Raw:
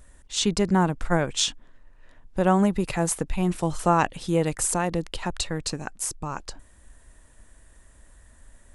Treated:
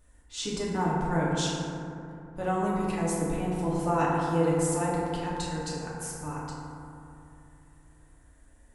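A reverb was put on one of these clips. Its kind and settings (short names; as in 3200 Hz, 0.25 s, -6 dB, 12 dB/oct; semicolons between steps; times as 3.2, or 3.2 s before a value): FDN reverb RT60 2.8 s, low-frequency decay 1.25×, high-frequency decay 0.3×, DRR -7 dB; gain -12.5 dB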